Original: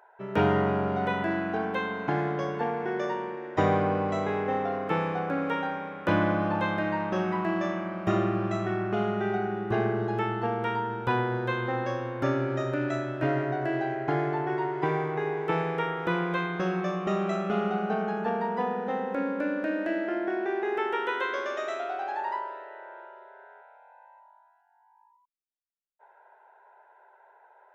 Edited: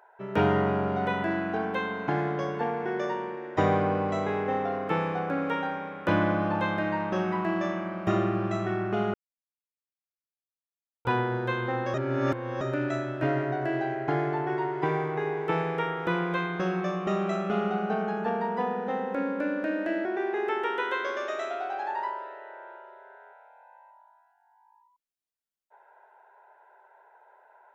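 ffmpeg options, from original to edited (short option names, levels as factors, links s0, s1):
-filter_complex "[0:a]asplit=6[s0][s1][s2][s3][s4][s5];[s0]atrim=end=9.14,asetpts=PTS-STARTPTS,afade=t=out:st=9.136:d=0.004:c=hsin[s6];[s1]atrim=start=9.14:end=11.05,asetpts=PTS-STARTPTS,volume=0[s7];[s2]atrim=start=11.05:end=11.942,asetpts=PTS-STARTPTS,afade=t=in:d=0.004:c=hsin[s8];[s3]atrim=start=11.938:end=12.612,asetpts=PTS-STARTPTS,areverse[s9];[s4]atrim=start=12.608:end=20.052[s10];[s5]atrim=start=20.338[s11];[s6][s7][s8]concat=n=3:v=0:a=1[s12];[s12][s9]acrossfade=d=0.004:c1=hsin:c2=hsin[s13];[s13][s10]acrossfade=d=0.004:c1=hsin:c2=hsin[s14];[s14][s11]acrossfade=d=0.004:c1=hsin:c2=hsin"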